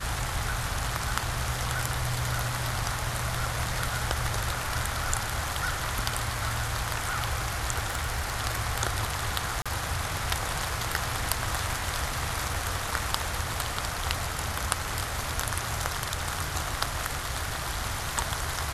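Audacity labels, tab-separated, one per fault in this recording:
7.860000	8.320000	clipped -23 dBFS
9.620000	9.660000	gap 36 ms

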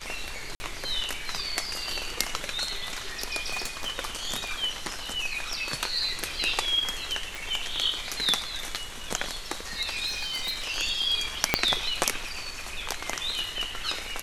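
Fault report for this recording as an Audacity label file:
0.550000	0.600000	gap 50 ms
3.500000	3.910000	clipped -25 dBFS
7.350000	7.350000	pop
10.060000	10.650000	clipped -26.5 dBFS
11.540000	11.540000	pop -2 dBFS

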